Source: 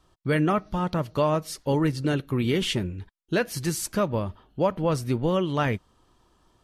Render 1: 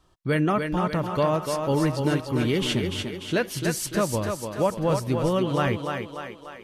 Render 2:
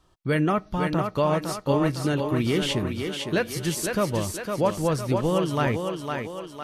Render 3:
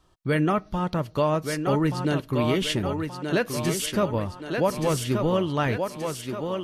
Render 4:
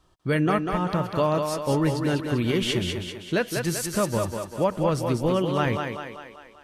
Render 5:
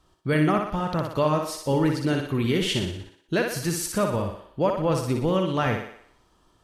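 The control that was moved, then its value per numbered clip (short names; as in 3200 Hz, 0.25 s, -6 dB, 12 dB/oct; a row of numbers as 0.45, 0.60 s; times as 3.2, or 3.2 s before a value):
thinning echo, time: 294, 507, 1177, 195, 60 ms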